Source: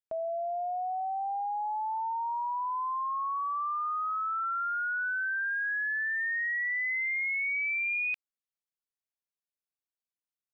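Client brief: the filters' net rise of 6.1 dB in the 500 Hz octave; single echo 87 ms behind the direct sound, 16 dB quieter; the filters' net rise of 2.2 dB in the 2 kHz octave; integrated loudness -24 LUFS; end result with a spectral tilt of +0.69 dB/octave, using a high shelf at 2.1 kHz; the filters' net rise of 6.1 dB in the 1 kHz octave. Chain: peaking EQ 500 Hz +6.5 dB; peaking EQ 1 kHz +6.5 dB; peaking EQ 2 kHz +4.5 dB; treble shelf 2.1 kHz -8 dB; delay 87 ms -16 dB; trim +2.5 dB

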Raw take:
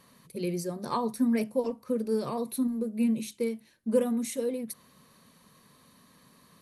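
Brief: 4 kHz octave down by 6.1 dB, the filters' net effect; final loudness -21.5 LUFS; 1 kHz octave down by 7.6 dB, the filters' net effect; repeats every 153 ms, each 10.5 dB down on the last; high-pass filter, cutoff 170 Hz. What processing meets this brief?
high-pass 170 Hz; peaking EQ 1 kHz -9 dB; peaking EQ 4 kHz -7 dB; feedback delay 153 ms, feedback 30%, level -10.5 dB; trim +10 dB

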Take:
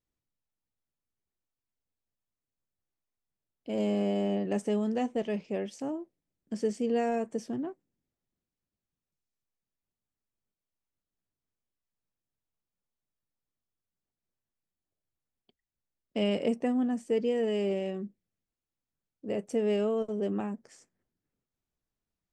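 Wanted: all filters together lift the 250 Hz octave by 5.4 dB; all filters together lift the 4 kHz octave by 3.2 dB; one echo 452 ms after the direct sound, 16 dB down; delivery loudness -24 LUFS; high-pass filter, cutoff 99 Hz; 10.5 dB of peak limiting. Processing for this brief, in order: high-pass 99 Hz; peaking EQ 250 Hz +6.5 dB; peaking EQ 4 kHz +5.5 dB; peak limiter -23 dBFS; delay 452 ms -16 dB; trim +8 dB

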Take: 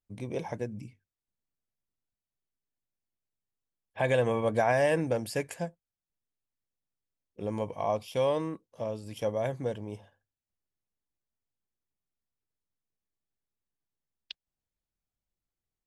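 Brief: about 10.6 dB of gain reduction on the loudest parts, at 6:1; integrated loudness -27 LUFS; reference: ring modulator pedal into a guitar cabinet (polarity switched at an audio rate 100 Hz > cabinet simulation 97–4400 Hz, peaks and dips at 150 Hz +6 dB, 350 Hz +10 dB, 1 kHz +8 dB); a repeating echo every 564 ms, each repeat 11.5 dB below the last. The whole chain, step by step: compression 6:1, threshold -33 dBFS; feedback delay 564 ms, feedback 27%, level -11.5 dB; polarity switched at an audio rate 100 Hz; cabinet simulation 97–4400 Hz, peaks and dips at 150 Hz +6 dB, 350 Hz +10 dB, 1 kHz +8 dB; trim +9 dB

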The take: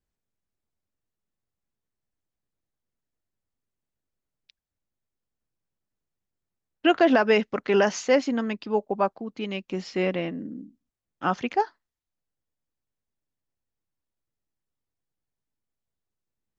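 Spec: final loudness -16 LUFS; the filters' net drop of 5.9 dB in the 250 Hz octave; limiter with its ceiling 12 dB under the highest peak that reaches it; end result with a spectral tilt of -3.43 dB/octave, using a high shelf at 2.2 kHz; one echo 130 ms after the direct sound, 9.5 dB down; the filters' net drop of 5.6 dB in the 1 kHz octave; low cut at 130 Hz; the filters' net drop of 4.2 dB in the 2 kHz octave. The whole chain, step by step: high-pass 130 Hz; peaking EQ 250 Hz -7 dB; peaking EQ 1 kHz -7.5 dB; peaking EQ 2 kHz -6.5 dB; treble shelf 2.2 kHz +6 dB; peak limiter -23.5 dBFS; delay 130 ms -9.5 dB; trim +18.5 dB

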